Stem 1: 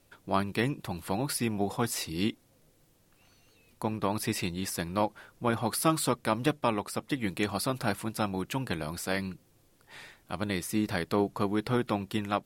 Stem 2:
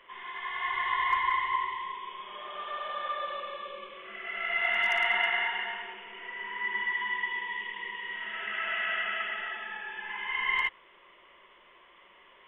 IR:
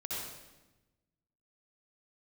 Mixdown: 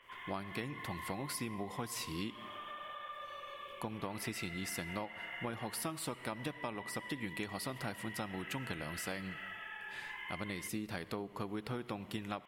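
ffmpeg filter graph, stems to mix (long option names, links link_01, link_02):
-filter_complex "[0:a]equalizer=frequency=2500:width_type=o:width=0.77:gain=2.5,agate=range=-33dB:threshold=-60dB:ratio=3:detection=peak,volume=-5dB,asplit=2[link_01][link_02];[link_02]volume=-19.5dB[link_03];[1:a]acompressor=threshold=-38dB:ratio=6,equalizer=frequency=2500:width_type=o:width=2.5:gain=4,volume=-8dB[link_04];[2:a]atrim=start_sample=2205[link_05];[link_03][link_05]afir=irnorm=-1:irlink=0[link_06];[link_01][link_04][link_06]amix=inputs=3:normalize=0,acompressor=threshold=-36dB:ratio=10"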